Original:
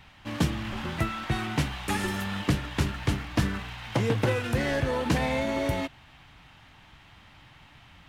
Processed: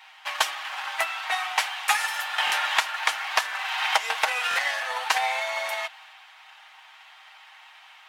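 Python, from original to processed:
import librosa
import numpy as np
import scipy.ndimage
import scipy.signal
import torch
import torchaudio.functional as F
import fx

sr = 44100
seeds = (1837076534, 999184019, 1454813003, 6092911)

y = scipy.signal.sosfilt(scipy.signal.cheby1(4, 1.0, 740.0, 'highpass', fs=sr, output='sos'), x)
y = fx.transient(y, sr, attack_db=8, sustain_db=3)
y = y + 0.53 * np.pad(y, (int(6.4 * sr / 1000.0), 0))[:len(y)]
y = fx.buffer_glitch(y, sr, at_s=(2.45, 4.49), block=1024, repeats=2)
y = fx.band_squash(y, sr, depth_pct=100, at=(2.38, 4.59))
y = y * 10.0 ** (4.5 / 20.0)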